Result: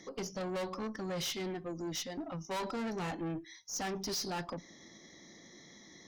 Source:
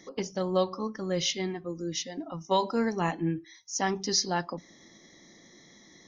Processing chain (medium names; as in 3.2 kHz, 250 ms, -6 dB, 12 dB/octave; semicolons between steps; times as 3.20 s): one-sided clip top -23 dBFS; valve stage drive 34 dB, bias 0.25